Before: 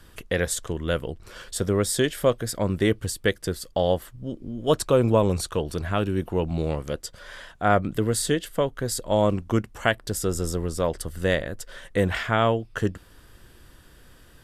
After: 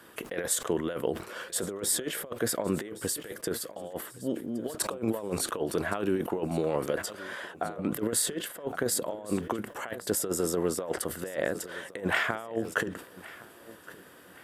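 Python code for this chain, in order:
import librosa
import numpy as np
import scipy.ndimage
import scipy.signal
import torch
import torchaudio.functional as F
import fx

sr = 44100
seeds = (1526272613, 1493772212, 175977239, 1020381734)

p1 = scipy.signal.sosfilt(scipy.signal.butter(2, 290.0, 'highpass', fs=sr, output='sos'), x)
p2 = fx.peak_eq(p1, sr, hz=5000.0, db=-8.5, octaves=1.8)
p3 = fx.over_compress(p2, sr, threshold_db=-30.0, ratio=-0.5)
p4 = p3 + fx.echo_feedback(p3, sr, ms=1116, feedback_pct=36, wet_db=-19.0, dry=0)
y = fx.sustainer(p4, sr, db_per_s=120.0)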